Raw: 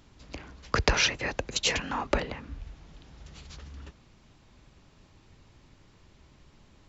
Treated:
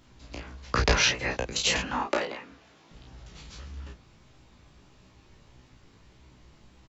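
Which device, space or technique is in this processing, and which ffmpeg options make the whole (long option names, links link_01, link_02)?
double-tracked vocal: -filter_complex "[0:a]asettb=1/sr,asplit=3[link_01][link_02][link_03];[link_01]atrim=end=2.024[link_04];[link_02]atrim=start=2.02:end=2.91,asetpts=PTS-STARTPTS,afade=type=in:duration=0.004:curve=qsin,afade=type=out:start_time=0.886:duration=0.004:curve=qsin,highpass=280[link_05];[link_03]atrim=start=2.906[link_06];[link_04][link_05]acrossfade=duration=0.004:curve1=hsin:curve2=qsin[link_07];[link_07][link_06]acrossfade=duration=0.004:curve1=qsin:curve2=hsin,asplit=2[link_08][link_09];[link_09]adelay=32,volume=-3dB[link_10];[link_08][link_10]amix=inputs=2:normalize=0,flanger=delay=15.5:depth=2.7:speed=1.6,volume=3dB"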